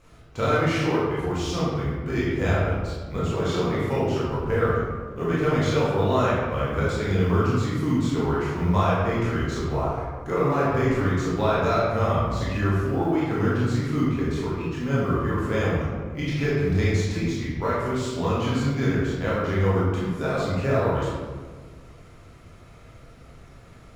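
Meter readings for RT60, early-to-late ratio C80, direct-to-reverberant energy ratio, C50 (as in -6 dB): 1.5 s, 1.0 dB, -8.0 dB, -2.0 dB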